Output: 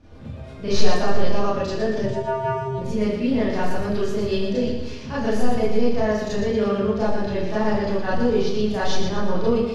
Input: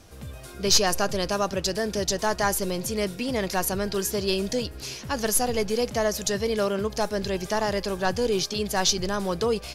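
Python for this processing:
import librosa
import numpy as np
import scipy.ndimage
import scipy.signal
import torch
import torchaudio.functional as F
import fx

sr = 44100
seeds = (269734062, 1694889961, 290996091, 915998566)

y = scipy.signal.sosfilt(scipy.signal.butter(2, 3300.0, 'lowpass', fs=sr, output='sos'), x)
y = fx.low_shelf(y, sr, hz=440.0, db=8.5)
y = fx.vocoder(y, sr, bands=8, carrier='square', carrier_hz=132.0, at=(2.02, 2.78))
y = fx.echo_feedback(y, sr, ms=117, feedback_pct=44, wet_db=-6.5)
y = fx.rev_schroeder(y, sr, rt60_s=0.37, comb_ms=26, drr_db=-8.5)
y = F.gain(torch.from_numpy(y), -10.0).numpy()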